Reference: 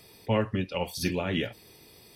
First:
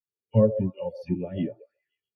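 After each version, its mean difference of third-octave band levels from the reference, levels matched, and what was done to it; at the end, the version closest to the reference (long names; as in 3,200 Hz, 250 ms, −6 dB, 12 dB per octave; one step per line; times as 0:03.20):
17.0 dB: all-pass dispersion lows, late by 60 ms, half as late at 1,800 Hz
on a send: echo through a band-pass that steps 133 ms, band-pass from 560 Hz, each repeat 0.7 octaves, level −3.5 dB
on the sum: every bin expanded away from the loudest bin 2.5 to 1
level +6 dB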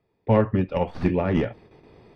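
8.0 dB: stylus tracing distortion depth 0.16 ms
low-pass filter 1,400 Hz 12 dB per octave
noise gate with hold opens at −48 dBFS
level +7 dB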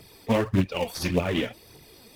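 4.5 dB: phase shifter 1.7 Hz, delay 4.6 ms, feedback 58%
in parallel at −10 dB: sample-and-hold swept by an LFO 22×, swing 100% 3.9 Hz
on the sum: highs frequency-modulated by the lows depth 0.32 ms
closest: third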